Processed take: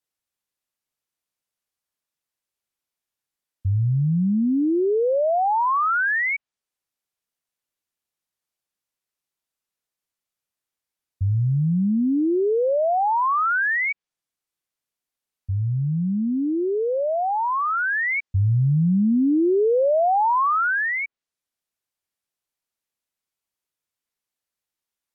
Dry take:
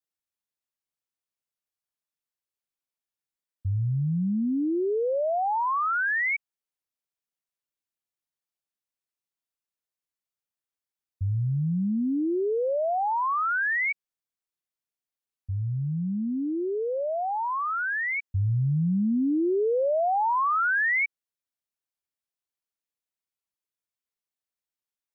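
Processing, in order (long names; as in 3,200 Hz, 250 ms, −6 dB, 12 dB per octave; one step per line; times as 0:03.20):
treble cut that deepens with the level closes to 1,500 Hz, closed at −22 dBFS
level +5.5 dB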